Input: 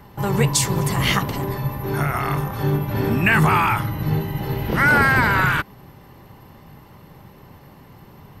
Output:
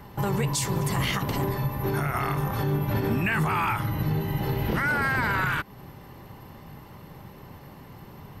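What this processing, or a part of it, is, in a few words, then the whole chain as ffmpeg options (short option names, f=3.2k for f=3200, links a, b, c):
stacked limiters: -af "alimiter=limit=-11dB:level=0:latency=1:release=40,alimiter=limit=-17dB:level=0:latency=1:release=198"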